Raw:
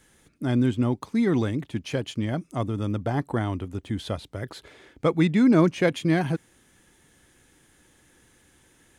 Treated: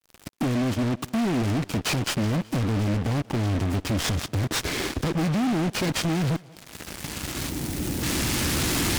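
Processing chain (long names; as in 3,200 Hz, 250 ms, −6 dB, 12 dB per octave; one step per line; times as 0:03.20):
hearing-aid frequency compression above 3,000 Hz 1.5 to 1
camcorder AGC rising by 8.3 dB per second
high-pass filter 40 Hz 12 dB per octave
flat-topped bell 890 Hz −12 dB 2.3 octaves
in parallel at −1 dB: brickwall limiter −20 dBFS, peak gain reduction 10 dB
on the sum: downward compressor 12 to 1, threshold −32 dBFS, peak gain reduction 19.5 dB
fuzz pedal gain 44 dB, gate −48 dBFS
time-frequency box erased 0:07.49–0:08.03, 1,000–6,600 Hz
soft clipping −12.5 dBFS, distortion −23 dB
on a send: feedback echo with a high-pass in the loop 188 ms, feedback 50%, high-pass 170 Hz, level −21.5 dB
on the sum: short delay modulated by noise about 1,700 Hz, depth 0.062 ms
level −6.5 dB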